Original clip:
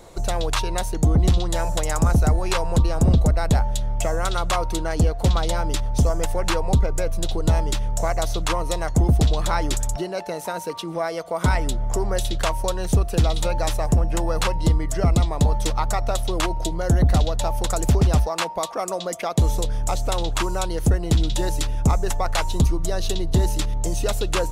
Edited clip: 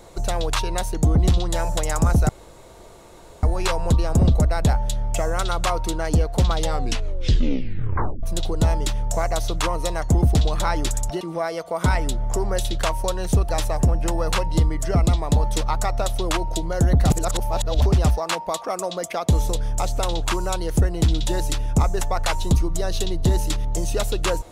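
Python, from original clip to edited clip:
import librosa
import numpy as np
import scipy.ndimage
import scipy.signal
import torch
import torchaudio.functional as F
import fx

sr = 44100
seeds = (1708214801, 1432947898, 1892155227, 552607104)

y = fx.edit(x, sr, fx.insert_room_tone(at_s=2.29, length_s=1.14),
    fx.tape_stop(start_s=5.42, length_s=1.67),
    fx.cut(start_s=10.07, length_s=0.74),
    fx.cut(start_s=13.09, length_s=0.49),
    fx.reverse_span(start_s=17.19, length_s=0.72), tone=tone)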